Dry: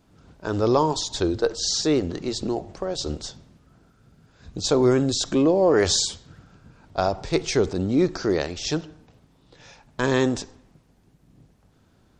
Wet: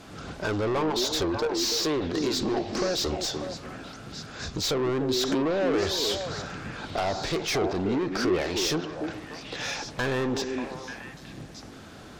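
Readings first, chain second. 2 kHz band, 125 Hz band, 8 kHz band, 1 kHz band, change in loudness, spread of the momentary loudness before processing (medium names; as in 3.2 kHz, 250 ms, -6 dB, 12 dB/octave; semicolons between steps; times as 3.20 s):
+0.5 dB, -5.0 dB, -4.0 dB, -2.5 dB, -4.5 dB, 13 LU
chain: low-pass that closes with the level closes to 2.6 kHz, closed at -16.5 dBFS; bass shelf 140 Hz +10 dB; band-stop 940 Hz, Q 12; compression 2.5:1, threshold -38 dBFS, peak gain reduction 17 dB; overdrive pedal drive 26 dB, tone 6.5 kHz, clips at -19 dBFS; repeats whose band climbs or falls 295 ms, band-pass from 300 Hz, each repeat 1.4 oct, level -1.5 dB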